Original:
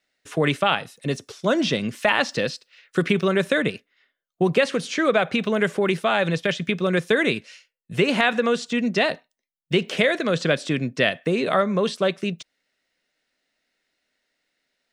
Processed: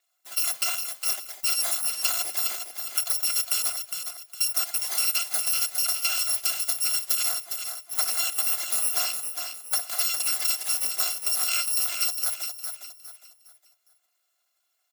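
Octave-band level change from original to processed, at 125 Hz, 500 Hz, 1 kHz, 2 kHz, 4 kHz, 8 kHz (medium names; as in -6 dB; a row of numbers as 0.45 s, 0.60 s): under -40 dB, -26.0 dB, -12.0 dB, -12.0 dB, +0.5 dB, +16.5 dB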